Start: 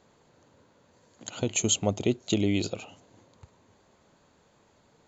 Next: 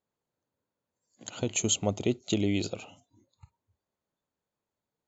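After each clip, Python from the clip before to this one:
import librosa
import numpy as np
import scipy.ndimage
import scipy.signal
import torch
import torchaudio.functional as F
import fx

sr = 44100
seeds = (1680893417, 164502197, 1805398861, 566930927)

y = fx.noise_reduce_blind(x, sr, reduce_db=24)
y = y * librosa.db_to_amplitude(-2.0)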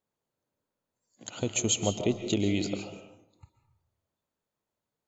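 y = fx.rev_freeverb(x, sr, rt60_s=0.84, hf_ratio=0.55, predelay_ms=100, drr_db=7.5)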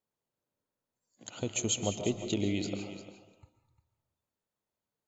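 y = x + 10.0 ** (-13.0 / 20.0) * np.pad(x, (int(351 * sr / 1000.0), 0))[:len(x)]
y = y * librosa.db_to_amplitude(-4.0)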